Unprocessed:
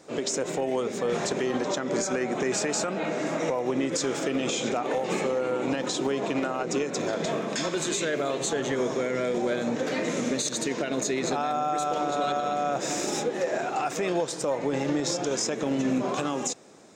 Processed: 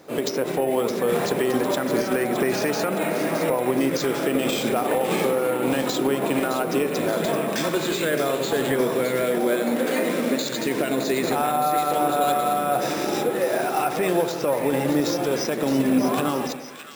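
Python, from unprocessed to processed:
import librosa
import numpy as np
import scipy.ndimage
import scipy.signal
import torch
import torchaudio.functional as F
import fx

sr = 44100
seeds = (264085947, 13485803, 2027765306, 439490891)

y = fx.highpass(x, sr, hz=180.0, slope=24, at=(9.22, 10.43))
y = fx.echo_split(y, sr, split_hz=1400.0, low_ms=88, high_ms=616, feedback_pct=52, wet_db=-8.5)
y = np.repeat(scipy.signal.resample_poly(y, 1, 4), 4)[:len(y)]
y = y * 10.0 ** (4.5 / 20.0)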